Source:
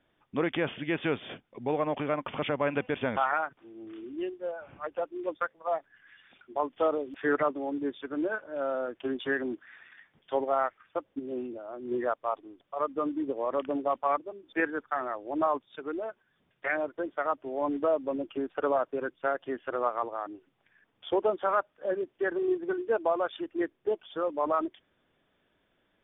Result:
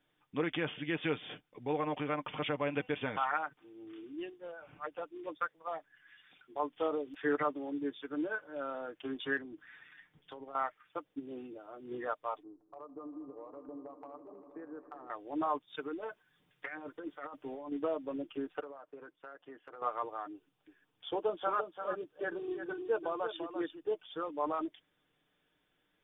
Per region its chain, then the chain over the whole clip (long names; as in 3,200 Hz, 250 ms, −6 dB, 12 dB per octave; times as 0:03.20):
0:09.37–0:10.55: low-shelf EQ 340 Hz +9 dB + downward compressor 8 to 1, threshold −36 dBFS
0:12.43–0:15.10: low-pass filter 1,100 Hz 24 dB per octave + downward compressor 10 to 1, threshold −38 dBFS + echo that builds up and dies away 80 ms, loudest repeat 5, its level −18 dB
0:15.68–0:17.72: notch filter 660 Hz, Q 18 + compressor whose output falls as the input rises −36 dBFS
0:18.60–0:19.82: low-pass filter 1,100 Hz 6 dB per octave + low-shelf EQ 270 Hz −12 dB + downward compressor 12 to 1, threshold −37 dBFS
0:20.33–0:23.90: parametric band 2,000 Hz −6 dB 0.38 octaves + single-tap delay 342 ms −8.5 dB
whole clip: high-shelf EQ 3,100 Hz +8.5 dB; notch filter 620 Hz, Q 12; comb filter 6.6 ms, depth 48%; level −7 dB